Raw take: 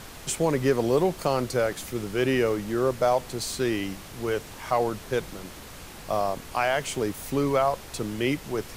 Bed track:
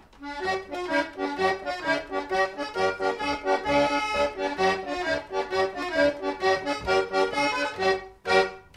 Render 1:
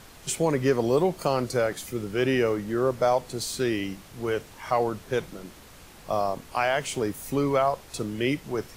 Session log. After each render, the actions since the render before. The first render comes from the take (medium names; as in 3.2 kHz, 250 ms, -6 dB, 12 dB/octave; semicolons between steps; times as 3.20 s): noise print and reduce 6 dB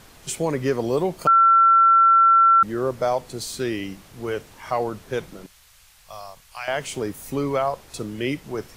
1.27–2.63 s: bleep 1.35 kHz -11 dBFS; 5.46–6.68 s: amplifier tone stack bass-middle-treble 10-0-10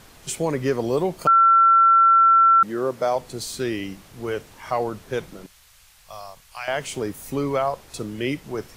2.18–3.16 s: high-pass 160 Hz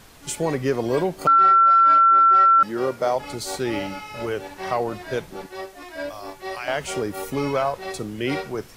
add bed track -9.5 dB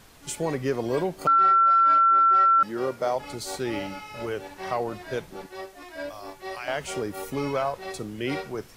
trim -4 dB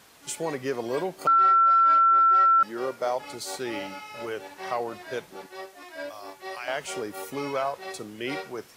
high-pass 210 Hz 6 dB/octave; bass shelf 350 Hz -4 dB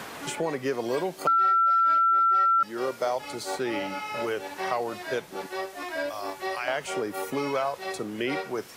three bands compressed up and down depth 70%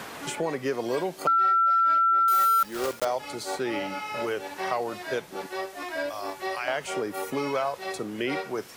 2.28–3.05 s: block-companded coder 3-bit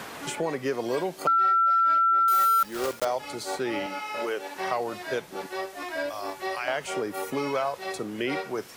3.86–4.56 s: high-pass 260 Hz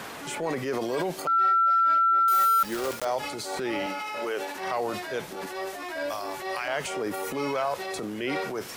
transient shaper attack -6 dB, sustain +7 dB